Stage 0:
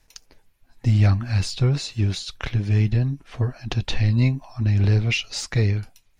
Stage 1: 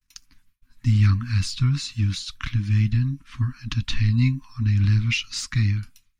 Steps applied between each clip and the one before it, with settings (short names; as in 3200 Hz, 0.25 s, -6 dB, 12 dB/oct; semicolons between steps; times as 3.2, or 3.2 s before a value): Chebyshev band-stop 270–1100 Hz, order 3; expander -51 dBFS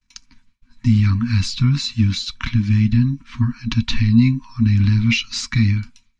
LPF 7200 Hz 24 dB/oct; limiter -14 dBFS, peak gain reduction 5 dB; small resonant body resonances 230/950/2300/4000 Hz, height 12 dB, ringing for 95 ms; gain +4.5 dB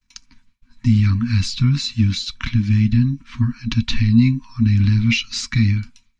dynamic EQ 960 Hz, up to -4 dB, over -43 dBFS, Q 1.4